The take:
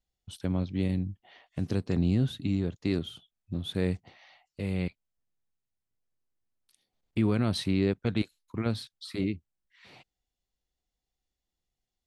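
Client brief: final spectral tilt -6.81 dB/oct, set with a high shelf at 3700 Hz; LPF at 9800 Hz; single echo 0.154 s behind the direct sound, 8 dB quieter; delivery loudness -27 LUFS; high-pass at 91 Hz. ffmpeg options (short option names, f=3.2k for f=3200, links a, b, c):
-af "highpass=91,lowpass=9.8k,highshelf=f=3.7k:g=-3,aecho=1:1:154:0.398,volume=4dB"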